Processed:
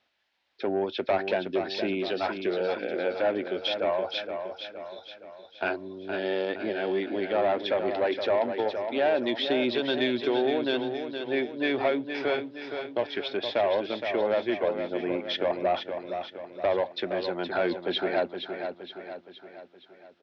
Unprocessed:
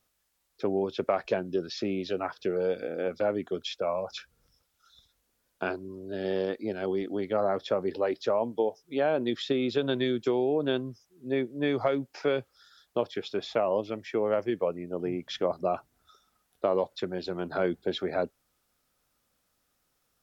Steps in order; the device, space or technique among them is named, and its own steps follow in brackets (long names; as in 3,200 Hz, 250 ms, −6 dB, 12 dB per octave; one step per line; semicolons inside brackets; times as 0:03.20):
overdrive pedal into a guitar cabinet (mid-hump overdrive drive 15 dB, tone 4,600 Hz, clips at −13 dBFS; loudspeaker in its box 83–4,100 Hz, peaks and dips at 150 Hz −9 dB, 460 Hz −6 dB, 1,200 Hz −10 dB)
repeating echo 468 ms, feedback 50%, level −7.5 dB